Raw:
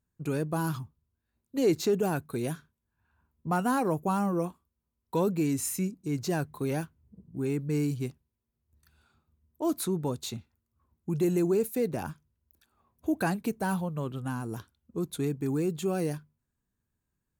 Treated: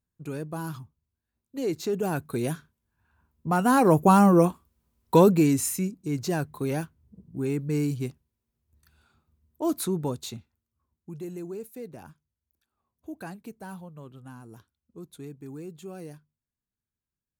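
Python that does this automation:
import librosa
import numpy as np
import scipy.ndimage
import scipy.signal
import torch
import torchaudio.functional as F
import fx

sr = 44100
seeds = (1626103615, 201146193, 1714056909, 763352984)

y = fx.gain(x, sr, db=fx.line((1.78, -4.0), (2.27, 3.5), (3.54, 3.5), (3.99, 11.0), (5.17, 11.0), (5.8, 2.0), (10.04, 2.0), (11.26, -11.0)))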